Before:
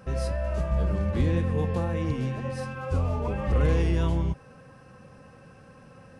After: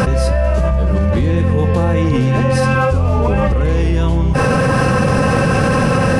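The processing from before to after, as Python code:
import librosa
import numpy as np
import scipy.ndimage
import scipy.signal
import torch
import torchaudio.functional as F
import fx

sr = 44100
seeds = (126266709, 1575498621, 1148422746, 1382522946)

y = fx.env_flatten(x, sr, amount_pct=100)
y = y * 10.0 ** (6.0 / 20.0)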